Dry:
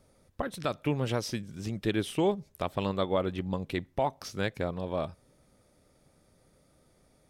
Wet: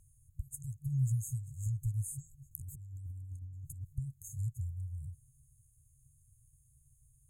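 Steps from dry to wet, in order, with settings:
brick-wall band-stop 150–6,400 Hz
0:02.51–0:03.93: compressor whose output falls as the input rises −48 dBFS, ratio −1
level +3.5 dB

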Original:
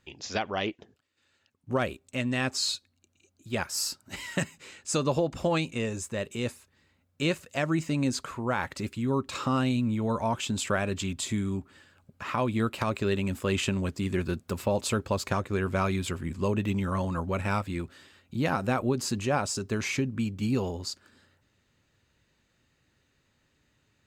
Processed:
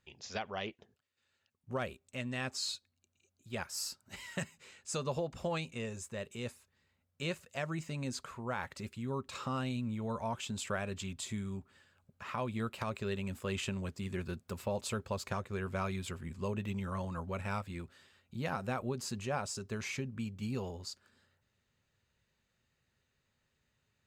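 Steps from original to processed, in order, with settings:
parametric band 300 Hz −13.5 dB 0.22 octaves
level −8.5 dB

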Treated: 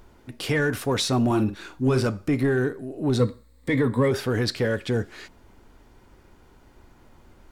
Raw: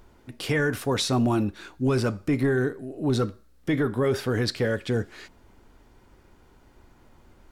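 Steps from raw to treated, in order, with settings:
0:03.19–0:04.11: EQ curve with evenly spaced ripples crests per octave 0.99, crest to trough 12 dB
in parallel at −11 dB: soft clipping −28.5 dBFS, distortion −7 dB
0:01.26–0:02.07: on the sum: double-tracking delay 46 ms −9.5 dB

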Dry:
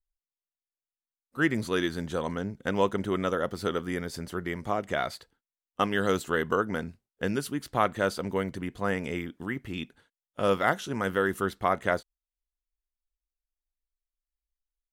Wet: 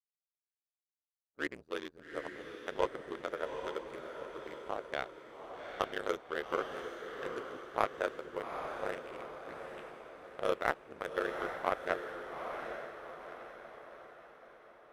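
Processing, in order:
adaptive Wiener filter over 41 samples
low shelf with overshoot 310 Hz −10 dB, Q 1.5
power curve on the samples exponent 1.4
ring modulation 35 Hz
on a send: feedback delay with all-pass diffusion 814 ms, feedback 49%, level −6 dB
on the sum: level −2 dB

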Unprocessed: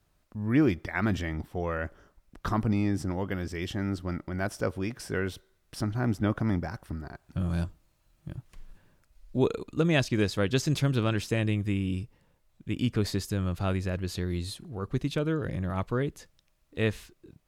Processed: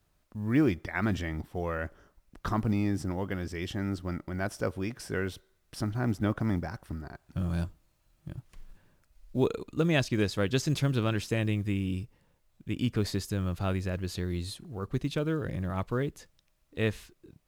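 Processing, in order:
log-companded quantiser 8 bits
level −1.5 dB

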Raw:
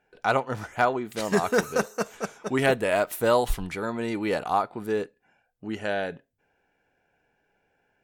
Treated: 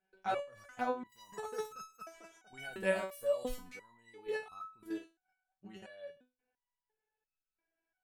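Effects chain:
output level in coarse steps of 13 dB
step-sequenced resonator 2.9 Hz 190–1,300 Hz
level +5 dB

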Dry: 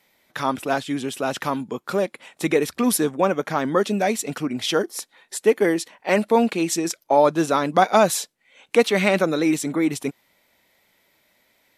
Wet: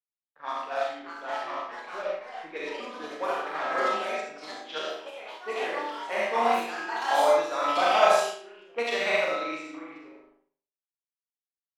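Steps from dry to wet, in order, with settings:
flutter between parallel walls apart 6.6 metres, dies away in 0.87 s
centre clipping without the shift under −31 dBFS
three-way crossover with the lows and the highs turned down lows −15 dB, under 550 Hz, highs −14 dB, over 5,900 Hz
double-tracking delay 13 ms −7 dB
low-pass that shuts in the quiet parts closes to 420 Hz, open at −15.5 dBFS
convolution reverb RT60 0.50 s, pre-delay 20 ms, DRR −0.5 dB
delay with pitch and tempo change per echo 714 ms, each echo +4 semitones, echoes 2, each echo −6 dB
parametric band 130 Hz −10 dB 0.93 octaves
expander for the loud parts 1.5 to 1, over −28 dBFS
level −7.5 dB

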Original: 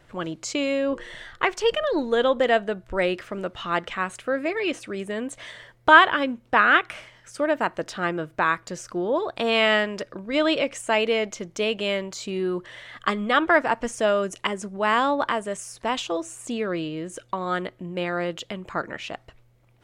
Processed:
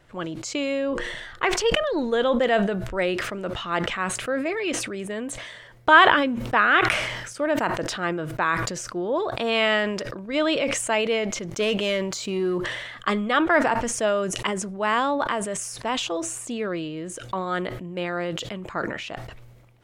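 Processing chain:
0:11.48–0:12.58: leveller curve on the samples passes 1
level that may fall only so fast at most 41 dB per second
level −1.5 dB

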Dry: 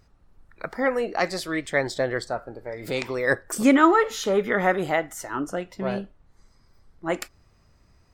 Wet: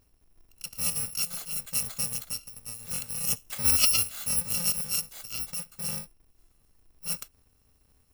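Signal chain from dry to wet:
samples in bit-reversed order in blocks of 128 samples
level −6 dB

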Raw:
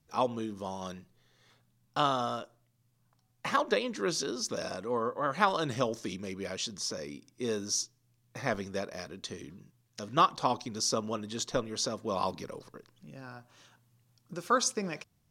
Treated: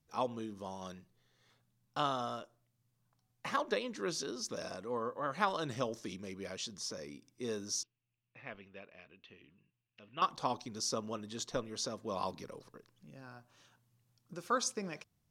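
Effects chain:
0:07.83–0:10.22: transistor ladder low-pass 2,900 Hz, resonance 75%
level −6 dB

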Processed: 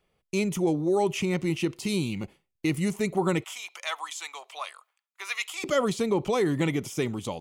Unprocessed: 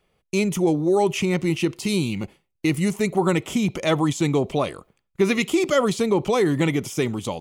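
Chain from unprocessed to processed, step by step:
0:03.44–0:05.64: high-pass filter 910 Hz 24 dB per octave
level −5 dB

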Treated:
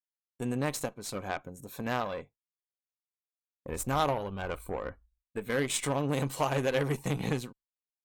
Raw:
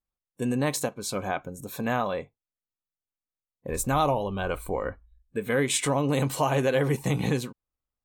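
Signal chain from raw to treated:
downward expander −45 dBFS
harmonic generator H 3 −16 dB, 8 −29 dB, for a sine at −12 dBFS
level −1.5 dB

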